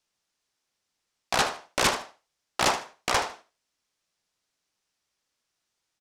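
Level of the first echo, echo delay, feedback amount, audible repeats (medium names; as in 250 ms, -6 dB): -13.5 dB, 77 ms, 20%, 2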